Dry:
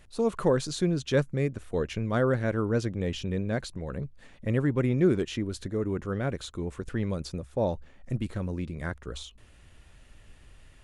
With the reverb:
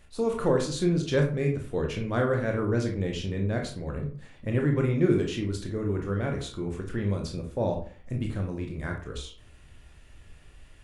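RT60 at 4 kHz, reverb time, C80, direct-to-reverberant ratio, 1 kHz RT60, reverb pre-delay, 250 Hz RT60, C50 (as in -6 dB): 0.25 s, 0.45 s, 12.5 dB, 1.0 dB, 0.45 s, 19 ms, 0.50 s, 7.0 dB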